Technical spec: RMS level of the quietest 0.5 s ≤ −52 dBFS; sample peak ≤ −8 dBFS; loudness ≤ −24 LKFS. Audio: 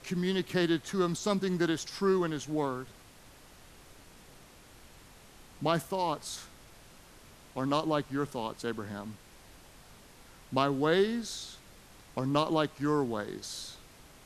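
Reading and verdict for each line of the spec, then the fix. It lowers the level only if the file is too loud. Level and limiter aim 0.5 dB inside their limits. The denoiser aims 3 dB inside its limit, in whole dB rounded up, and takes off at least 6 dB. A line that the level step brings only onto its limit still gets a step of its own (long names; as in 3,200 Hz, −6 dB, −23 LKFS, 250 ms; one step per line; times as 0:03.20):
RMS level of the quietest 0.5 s −55 dBFS: in spec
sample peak −12.5 dBFS: in spec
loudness −31.5 LKFS: in spec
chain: no processing needed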